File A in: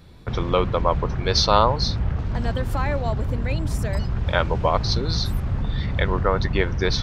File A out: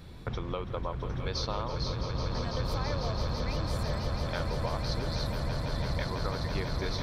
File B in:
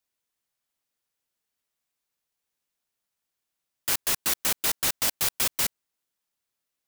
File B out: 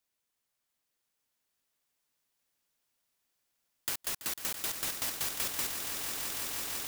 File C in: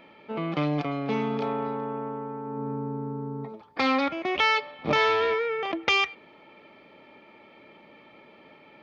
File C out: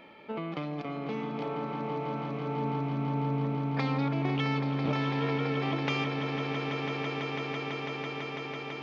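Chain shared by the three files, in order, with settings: compression 8:1, threshold -32 dBFS; on a send: echo with a slow build-up 166 ms, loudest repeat 8, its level -9.5 dB

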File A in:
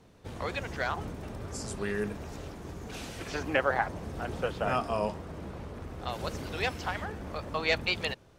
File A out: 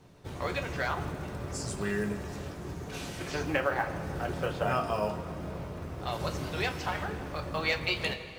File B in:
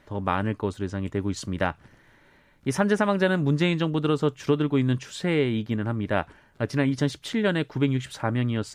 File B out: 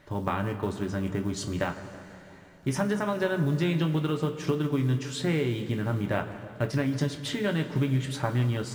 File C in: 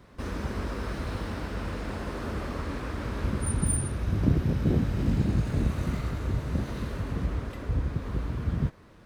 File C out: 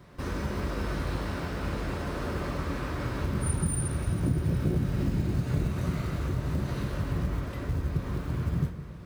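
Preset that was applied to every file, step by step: compression 4:1, threshold -26 dBFS; short-mantissa float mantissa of 4-bit; filtered feedback delay 162 ms, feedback 71%, level -16 dB; two-slope reverb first 0.22 s, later 3.1 s, from -18 dB, DRR 3.5 dB

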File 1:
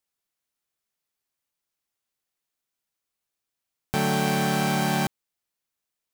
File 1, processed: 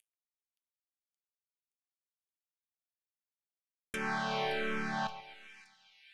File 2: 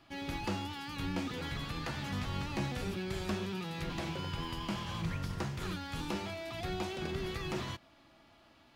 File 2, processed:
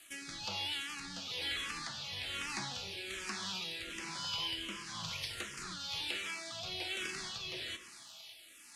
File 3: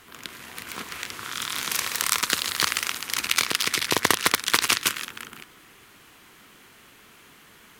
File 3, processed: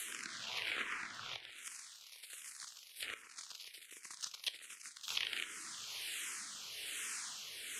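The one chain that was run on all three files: CVSD coder 64 kbps; pre-emphasis filter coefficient 0.9; inverted gate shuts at -27 dBFS, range -33 dB; bass shelf 370 Hz -11 dB; in parallel at +0.5 dB: compression, threshold -53 dBFS; on the sum: sine folder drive 4 dB, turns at -25.5 dBFS; low-pass that closes with the level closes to 2 kHz, closed at -31.5 dBFS; feedback comb 110 Hz, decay 0.35 s, harmonics all, mix 50%; rotary cabinet horn 1.1 Hz; two-band feedback delay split 2.2 kHz, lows 134 ms, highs 572 ms, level -13 dB; barber-pole phaser -1.3 Hz; trim +11.5 dB

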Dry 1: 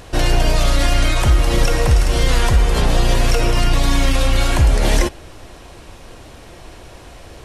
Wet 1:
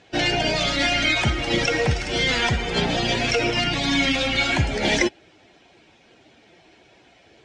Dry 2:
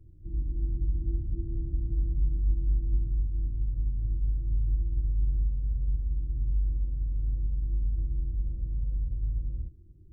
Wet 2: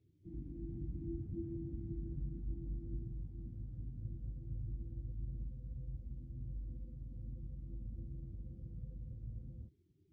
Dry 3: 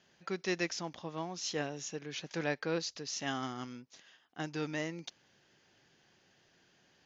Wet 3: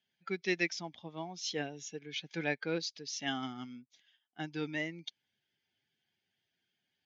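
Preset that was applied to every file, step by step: expander on every frequency bin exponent 1.5; cabinet simulation 140–6300 Hz, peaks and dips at 550 Hz -4 dB, 1.1 kHz -9 dB, 2.2 kHz +7 dB, 3.3 kHz +4 dB; trim +2.5 dB

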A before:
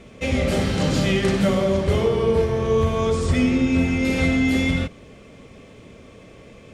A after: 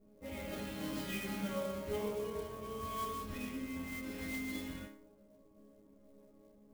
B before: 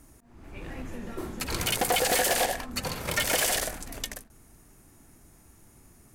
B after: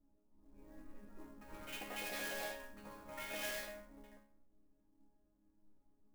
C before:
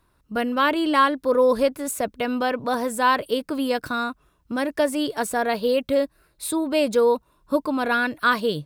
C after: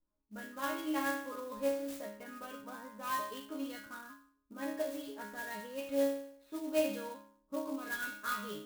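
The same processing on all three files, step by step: chord resonator G#3 sus4, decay 0.64 s; level-controlled noise filter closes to 600 Hz, open at -39.5 dBFS; sampling jitter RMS 0.035 ms; trim +4.5 dB

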